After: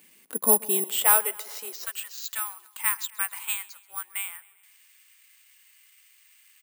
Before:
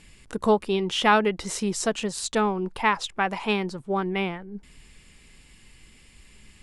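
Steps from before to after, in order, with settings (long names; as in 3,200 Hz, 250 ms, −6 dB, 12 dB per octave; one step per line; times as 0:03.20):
high-pass filter 210 Hz 24 dB per octave, from 0:00.84 500 Hz, from 0:01.86 1,200 Hz
repeating echo 133 ms, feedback 59%, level −22 dB
bad sample-rate conversion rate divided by 4×, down filtered, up zero stuff
level −5.5 dB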